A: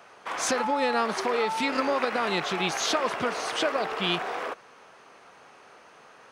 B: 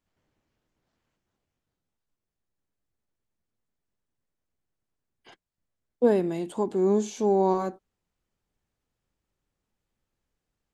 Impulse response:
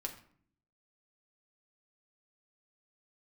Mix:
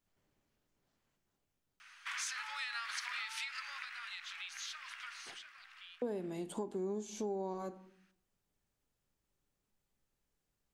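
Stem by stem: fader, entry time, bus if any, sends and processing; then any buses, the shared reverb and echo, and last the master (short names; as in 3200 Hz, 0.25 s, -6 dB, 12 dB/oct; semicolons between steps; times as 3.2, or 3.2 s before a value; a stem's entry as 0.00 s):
3.22 s -3.5 dB -> 4 s -12.5 dB -> 5.09 s -12.5 dB -> 5.53 s -21 dB, 1.80 s, send -5 dB, inverse Chebyshev high-pass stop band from 350 Hz, stop band 70 dB; high shelf 6000 Hz -9 dB; compressor 6:1, threshold -34 dBFS, peak gain reduction 9 dB
-6.5 dB, 0.00 s, send -5 dB, dry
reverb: on, RT60 0.55 s, pre-delay 5 ms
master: high shelf 5700 Hz +6 dB; compressor 5:1, threshold -37 dBFS, peak gain reduction 15.5 dB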